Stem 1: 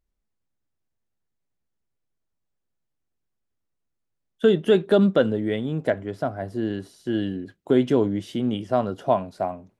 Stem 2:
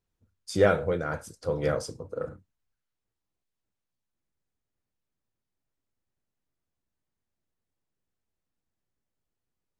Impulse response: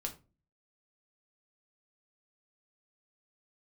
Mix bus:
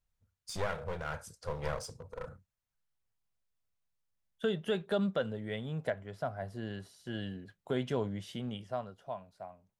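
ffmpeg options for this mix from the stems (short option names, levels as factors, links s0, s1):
-filter_complex "[0:a]volume=0.473,afade=t=out:st=8.33:d=0.63:silence=0.266073[s0];[1:a]alimiter=limit=0.178:level=0:latency=1:release=320,aeval=exprs='clip(val(0),-1,0.02)':c=same,volume=0.631[s1];[s0][s1]amix=inputs=2:normalize=0,equalizer=f=310:t=o:w=0.79:g=-14,alimiter=limit=0.0891:level=0:latency=1:release=487"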